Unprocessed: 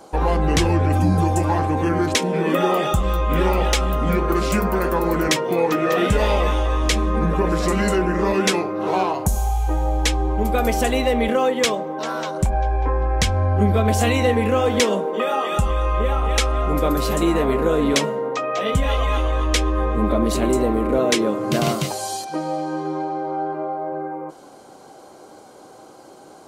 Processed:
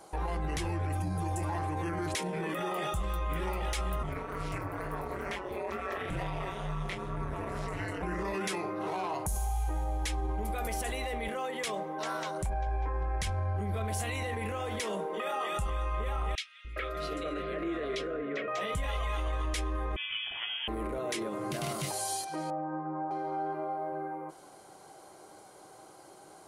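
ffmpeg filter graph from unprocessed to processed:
ffmpeg -i in.wav -filter_complex "[0:a]asettb=1/sr,asplit=3[link_01][link_02][link_03];[link_01]atrim=end=4.034[link_04];[link_02]atrim=start=4.03:end=8.03,asetpts=PTS-STARTPTS,afade=type=in:duration=0.004:curve=qsin,afade=type=out:start_time=3.996:duration=0.004:curve=qsin,acrossover=split=3100[link_05][link_06];[link_06]acompressor=threshold=-40dB:ratio=4:attack=1:release=60[link_07];[link_05][link_07]amix=inputs=2:normalize=0,flanger=delay=20:depth=6.4:speed=2.2,aeval=exprs='val(0)*sin(2*PI*95*n/s)':channel_layout=same[link_08];[link_03]atrim=start=8.026[link_09];[link_04][link_08]acrossfade=duration=0.004:curve1=hsin:curve2=qsin[link_10];[link_10][link_09]acrossfade=duration=0.004:curve1=qsin:curve2=hsin,asettb=1/sr,asplit=3[link_11][link_12][link_13];[link_11]atrim=end=16.354[link_14];[link_12]atrim=start=16.35:end=18.48,asetpts=PTS-STARTPTS,afade=type=in:duration=0.004:curve=qsin,afade=type=out:start_time=2.126:duration=0.004:curve=qsin,asuperstop=centerf=900:order=4:qfactor=1.6,acrossover=split=210 4300:gain=0.224 1 0.0708[link_15][link_16][link_17];[link_15][link_16][link_17]amix=inputs=3:normalize=0,acrossover=split=210|2400[link_18][link_19][link_20];[link_18]adelay=290[link_21];[link_19]adelay=410[link_22];[link_21][link_22][link_20]amix=inputs=3:normalize=0,atrim=end_sample=93933[link_23];[link_13]atrim=start=18.476[link_24];[link_14][link_23]acrossfade=duration=0.004:curve1=hsin:curve2=qsin[link_25];[link_25][link_24]acrossfade=duration=0.004:curve1=qsin:curve2=hsin,asettb=1/sr,asplit=3[link_26][link_27][link_28];[link_26]atrim=end=19.964[link_29];[link_27]atrim=start=19.96:end=20.68,asetpts=PTS-STARTPTS,afade=type=in:duration=0.004:curve=qsin,afade=type=out:start_time=0.716:duration=0.004:curve=qsin,highpass=frequency=1400:poles=1,lowpass=frequency=3100:width_type=q:width=0.5098,lowpass=frequency=3100:width_type=q:width=0.6013,lowpass=frequency=3100:width_type=q:width=0.9,lowpass=frequency=3100:width_type=q:width=2.563,afreqshift=-3600[link_30];[link_28]atrim=start=20.676[link_31];[link_29][link_30]acrossfade=duration=0.004:curve1=hsin:curve2=qsin[link_32];[link_32][link_31]acrossfade=duration=0.004:curve1=qsin:curve2=hsin,asettb=1/sr,asplit=3[link_33][link_34][link_35];[link_33]atrim=end=22.504[link_36];[link_34]atrim=start=22.5:end=23.11,asetpts=PTS-STARTPTS,afade=type=in:duration=0.004:curve=qsin,afade=type=out:start_time=0.606:duration=0.004:curve=qsin,lowpass=frequency=1500:width=0.5412,lowpass=frequency=1500:width=1.3066,bandreject=frequency=400:width=6.8[link_37];[link_35]atrim=start=23.106[link_38];[link_36][link_37]acrossfade=duration=0.004:curve1=hsin:curve2=qsin[link_39];[link_39][link_38]acrossfade=duration=0.004:curve1=qsin:curve2=hsin,alimiter=limit=-17.5dB:level=0:latency=1:release=26,equalizer=frequency=250:width_type=o:width=0.33:gain=-12,equalizer=frequency=500:width_type=o:width=0.33:gain=-5,equalizer=frequency=2000:width_type=o:width=0.33:gain=4,equalizer=frequency=10000:width_type=o:width=0.33:gain=10,volume=-7.5dB" out.wav

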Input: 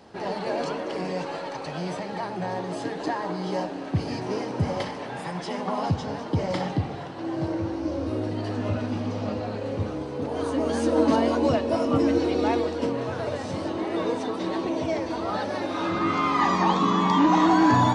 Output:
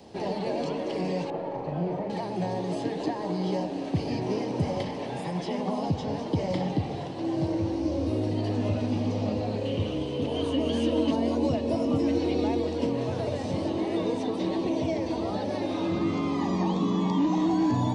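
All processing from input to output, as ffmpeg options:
ffmpeg -i in.wav -filter_complex "[0:a]asettb=1/sr,asplit=3[link_01][link_02][link_03];[link_01]atrim=end=1.304[link_04];[link_02]atrim=start=1.3:end=2.1,asetpts=PTS-STARTPTS,afade=type=in:duration=0.004:curve=qsin,afade=type=out:start_time=0.796:duration=0.004:curve=qsin,acrusher=bits=6:mix=0:aa=0.5,lowpass=1300,asplit=2[link_05][link_06];[link_06]adelay=41,volume=-5dB[link_07];[link_05][link_07]amix=inputs=2:normalize=0,atrim=end_sample=35280[link_08];[link_03]atrim=start=2.096[link_09];[link_04][link_08]acrossfade=duration=0.004:curve1=hsin:curve2=qsin[link_10];[link_10][link_09]acrossfade=duration=0.004:curve1=qsin:curve2=hsin,asettb=1/sr,asplit=3[link_11][link_12][link_13];[link_11]atrim=end=9.654[link_14];[link_12]atrim=start=9.65:end=11.11,asetpts=PTS-STARTPTS,afade=type=in:duration=0.004:curve=qsin,afade=type=out:start_time=1.456:duration=0.004:curve=qsin,equalizer=frequency=3000:width=4.2:gain=14.5,bandreject=frequency=800:width=9.2[link_15];[link_13]atrim=start=11.106[link_16];[link_14][link_15]acrossfade=duration=0.004:curve1=hsin:curve2=qsin[link_17];[link_17][link_16]acrossfade=duration=0.004:curve1=qsin:curve2=hsin,acrossover=split=310|690|3900[link_18][link_19][link_20][link_21];[link_18]acompressor=threshold=-28dB:ratio=4[link_22];[link_19]acompressor=threshold=-35dB:ratio=4[link_23];[link_20]acompressor=threshold=-35dB:ratio=4[link_24];[link_21]acompressor=threshold=-55dB:ratio=4[link_25];[link_22][link_23][link_24][link_25]amix=inputs=4:normalize=0,equalizer=frequency=1400:width_type=o:width=0.86:gain=-13.5,volume=3dB" out.wav

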